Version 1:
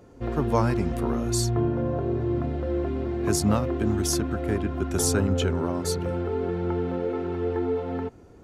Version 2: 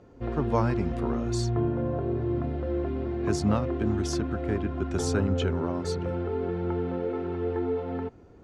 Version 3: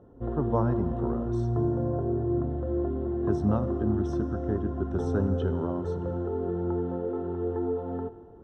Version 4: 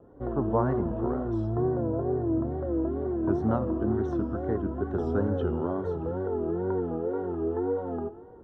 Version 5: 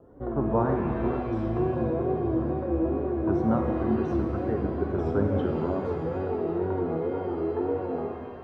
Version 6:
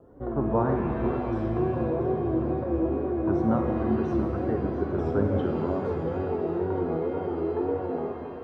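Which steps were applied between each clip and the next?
high-frequency loss of the air 100 metres; level −2 dB
moving average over 19 samples; four-comb reverb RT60 2.4 s, combs from 33 ms, DRR 12.5 dB
bass and treble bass −5 dB, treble −15 dB; tape wow and flutter 130 cents; level +2 dB
reverb with rising layers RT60 1.9 s, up +7 semitones, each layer −8 dB, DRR 4 dB
echo with a time of its own for lows and highs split 340 Hz, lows 281 ms, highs 684 ms, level −13 dB

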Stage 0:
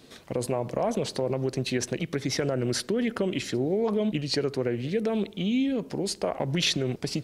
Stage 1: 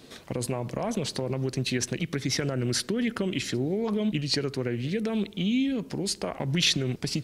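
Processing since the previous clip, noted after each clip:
dynamic equaliser 590 Hz, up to −8 dB, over −41 dBFS, Q 0.78
level +2.5 dB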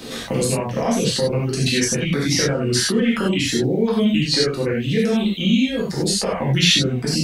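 reverb reduction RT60 1.7 s
reverb whose tail is shaped and stops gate 120 ms flat, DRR −6 dB
multiband upward and downward compressor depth 40%
level +3.5 dB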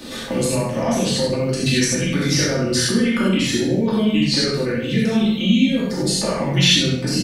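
on a send: repeating echo 65 ms, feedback 45%, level −12 dB
on the sum: rectangular room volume 2,400 cubic metres, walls furnished, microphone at 2.5 metres
level −2 dB

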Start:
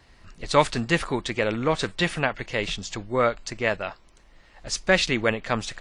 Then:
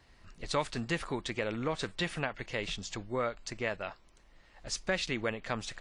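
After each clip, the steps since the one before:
downward compressor 2 to 1, threshold −25 dBFS, peak gain reduction 7.5 dB
level −6.5 dB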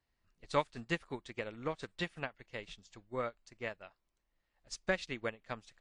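expander for the loud parts 2.5 to 1, over −42 dBFS
level +1.5 dB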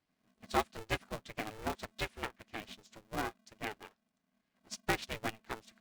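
ring modulator with a square carrier 220 Hz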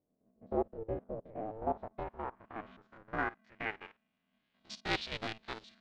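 spectrum averaged block by block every 50 ms
low-pass filter sweep 510 Hz → 4,100 Hz, 0:01.05–0:04.84
level +1 dB

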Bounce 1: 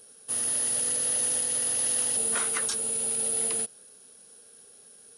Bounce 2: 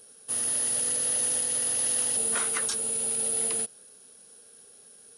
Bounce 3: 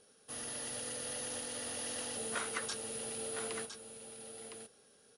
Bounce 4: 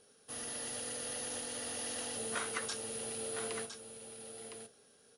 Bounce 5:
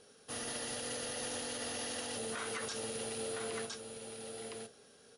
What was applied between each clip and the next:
no processing that can be heard
high-frequency loss of the air 74 metres; single-tap delay 1,010 ms −8 dB; level −4.5 dB
on a send at −13 dB: high-pass filter 100 Hz 24 dB per octave + convolution reverb, pre-delay 3 ms
low-pass filter 8,400 Hz 12 dB per octave; brickwall limiter −35.5 dBFS, peak gain reduction 10.5 dB; level +5 dB

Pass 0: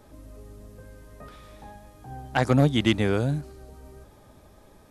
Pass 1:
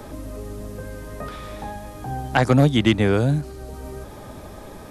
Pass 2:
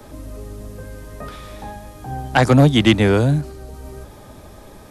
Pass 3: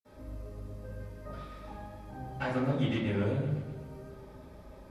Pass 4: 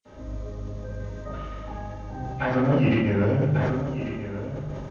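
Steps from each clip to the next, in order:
multiband upward and downward compressor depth 40%; level +6.5 dB
in parallel at −5.5 dB: soft clipping −16 dBFS, distortion −10 dB; on the sum: multiband upward and downward expander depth 40%
downward compressor 2 to 1, threshold −21 dBFS, peak gain reduction 7.5 dB; convolution reverb RT60 0.85 s, pre-delay 46 ms; feedback echo with a swinging delay time 127 ms, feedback 60%, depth 62 cents, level −11 dB; level −2 dB
hearing-aid frequency compression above 1,900 Hz 1.5 to 1; single-tap delay 1,143 ms −11 dB; level that may fall only so fast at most 22 dB per second; level +7.5 dB

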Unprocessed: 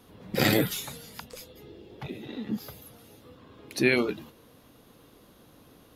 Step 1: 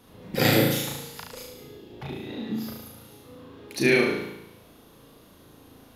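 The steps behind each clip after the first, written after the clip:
flutter between parallel walls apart 6.2 metres, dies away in 0.85 s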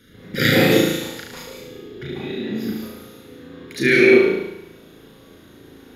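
convolution reverb RT60 0.45 s, pre-delay 139 ms, DRR 1 dB
level −2 dB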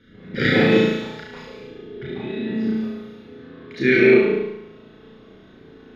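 high-frequency loss of the air 230 metres
on a send: flutter between parallel walls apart 5.4 metres, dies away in 0.43 s
on the sum: level −1 dB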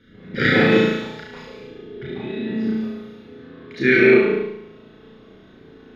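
dynamic equaliser 1,400 Hz, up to +5 dB, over −37 dBFS, Q 1.6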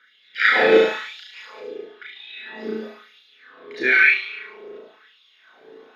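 auto-filter high-pass sine 1 Hz 430–3,400 Hz
phase shifter 0.63 Hz, delay 1.4 ms, feedback 27%
level −1 dB

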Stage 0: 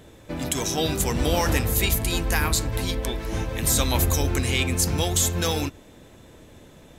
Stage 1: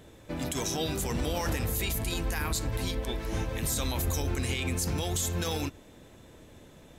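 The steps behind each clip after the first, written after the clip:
brickwall limiter −17 dBFS, peak gain reduction 9 dB
level −4 dB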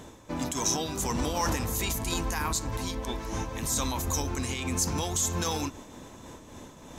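graphic EQ with 15 bands 250 Hz +5 dB, 1,000 Hz +10 dB, 6,300 Hz +9 dB
reversed playback
upward compression, threshold −35 dBFS
reversed playback
amplitude modulation by smooth noise, depth 55%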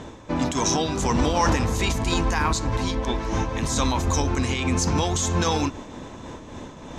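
high-frequency loss of the air 97 metres
level +8.5 dB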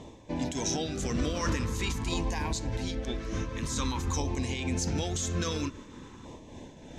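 auto-filter notch saw down 0.48 Hz 600–1,500 Hz
level −7.5 dB

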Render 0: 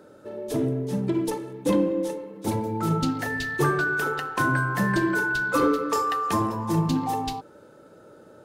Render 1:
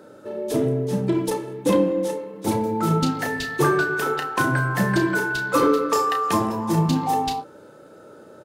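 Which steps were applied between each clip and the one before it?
low-shelf EQ 76 Hz −9 dB
double-tracking delay 32 ms −8 dB
level +4 dB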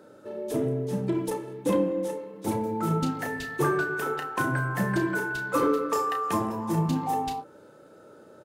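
dynamic equaliser 4,400 Hz, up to −6 dB, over −45 dBFS, Q 1.2
level −5.5 dB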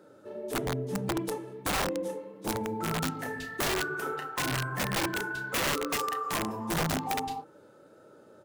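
flanger 1.6 Hz, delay 5.4 ms, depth 6 ms, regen −49%
wrap-around overflow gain 23.5 dB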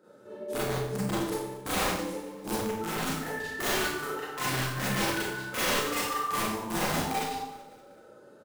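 repeating echo 190 ms, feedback 56%, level −20 dB
four-comb reverb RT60 0.66 s, combs from 30 ms, DRR −8.5 dB
level −7.5 dB

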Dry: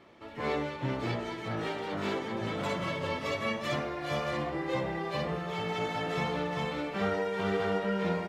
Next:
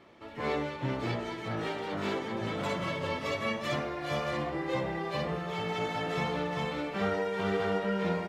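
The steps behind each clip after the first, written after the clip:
no processing that can be heard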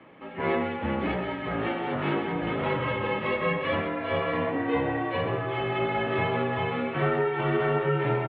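single-tap delay 130 ms −10 dB
single-sideband voice off tune −51 Hz 160–3,100 Hz
level +5.5 dB

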